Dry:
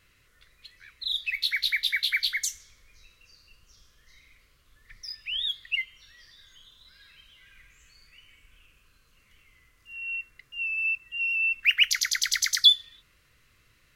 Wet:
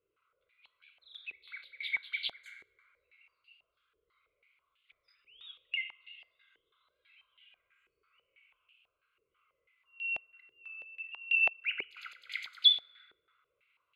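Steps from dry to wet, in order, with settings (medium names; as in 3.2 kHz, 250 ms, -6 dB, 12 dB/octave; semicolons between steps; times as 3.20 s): static phaser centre 1.2 kHz, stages 8; on a send at -5 dB: reverberation RT60 2.5 s, pre-delay 4 ms; on the sum: step-sequenced band-pass 6.1 Hz 400–2900 Hz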